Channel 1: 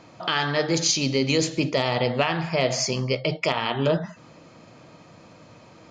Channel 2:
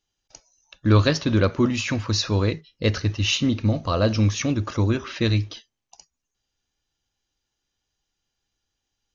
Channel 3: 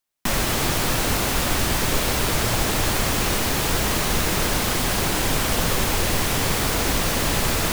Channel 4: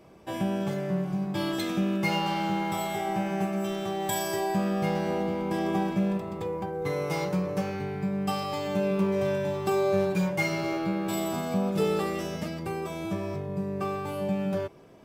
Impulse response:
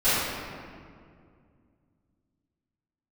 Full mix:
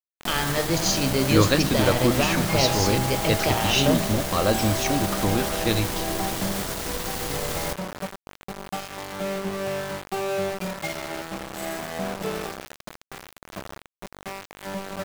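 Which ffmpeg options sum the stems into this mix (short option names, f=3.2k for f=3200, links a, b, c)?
-filter_complex "[0:a]lowshelf=f=190:g=5.5,volume=-2.5dB[a];[1:a]lowshelf=f=150:g=-8.5,adelay=450,volume=0dB[b];[2:a]equalizer=f=2.5k:w=5.8:g=-4.5,alimiter=limit=-17.5dB:level=0:latency=1,volume=-2.5dB[c];[3:a]equalizer=f=690:w=3.2:g=10,adelay=450,volume=-4dB[d];[a][b][c][d]amix=inputs=4:normalize=0,aeval=exprs='val(0)*gte(abs(val(0)),0.0422)':c=same"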